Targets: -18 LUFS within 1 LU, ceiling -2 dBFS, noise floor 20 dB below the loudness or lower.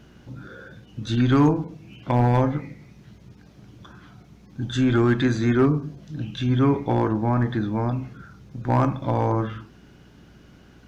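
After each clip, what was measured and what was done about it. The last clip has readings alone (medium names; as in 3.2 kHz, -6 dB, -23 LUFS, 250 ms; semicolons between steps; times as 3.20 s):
clipped samples 0.2%; clipping level -11.0 dBFS; hum 60 Hz; highest harmonic 420 Hz; hum level -38 dBFS; loudness -22.5 LUFS; peak level -11.0 dBFS; loudness target -18.0 LUFS
-> clip repair -11 dBFS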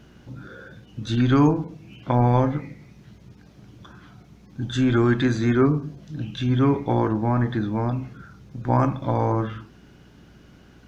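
clipped samples 0.0%; hum 60 Hz; highest harmonic 420 Hz; hum level -38 dBFS
-> de-hum 60 Hz, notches 7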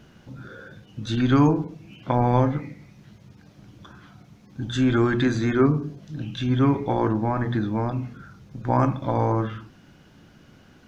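hum not found; loudness -23.5 LUFS; peak level -5.5 dBFS; loudness target -18.0 LUFS
-> trim +5.5 dB; peak limiter -2 dBFS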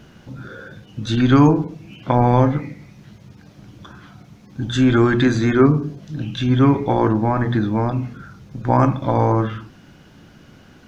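loudness -18.0 LUFS; peak level -2.0 dBFS; noise floor -47 dBFS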